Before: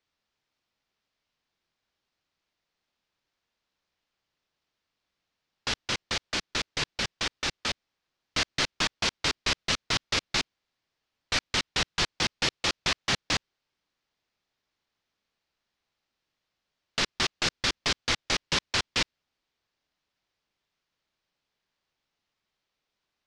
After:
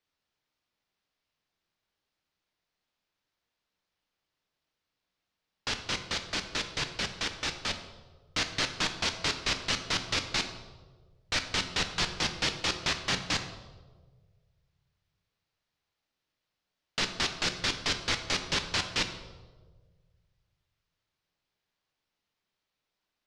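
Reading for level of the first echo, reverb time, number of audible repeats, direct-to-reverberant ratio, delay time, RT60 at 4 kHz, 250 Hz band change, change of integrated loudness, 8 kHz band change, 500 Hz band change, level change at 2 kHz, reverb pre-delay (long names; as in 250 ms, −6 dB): no echo audible, 1.5 s, no echo audible, 6.5 dB, no echo audible, 0.90 s, −1.5 dB, −2.5 dB, −2.5 dB, −2.0 dB, −2.5 dB, 7 ms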